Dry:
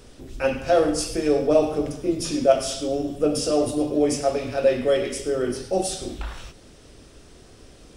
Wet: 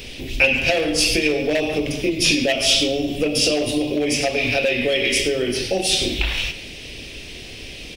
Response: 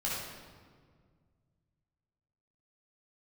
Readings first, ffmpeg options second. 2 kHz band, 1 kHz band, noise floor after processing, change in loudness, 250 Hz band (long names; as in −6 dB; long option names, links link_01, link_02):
+15.5 dB, −2.0 dB, −36 dBFS, +4.0 dB, +2.0 dB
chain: -filter_complex "[0:a]asplit=2[link_01][link_02];[link_02]acontrast=89,volume=-2dB[link_03];[link_01][link_03]amix=inputs=2:normalize=0,equalizer=frequency=8100:width_type=o:width=1.1:gain=-12,asoftclip=type=hard:threshold=-5dB,acompressor=threshold=-18dB:ratio=6,highshelf=frequency=1800:width_type=q:width=3:gain=10.5,asplit=2[link_04][link_05];[link_05]adelay=140,highpass=300,lowpass=3400,asoftclip=type=hard:threshold=-10.5dB,volume=-12dB[link_06];[link_04][link_06]amix=inputs=2:normalize=0"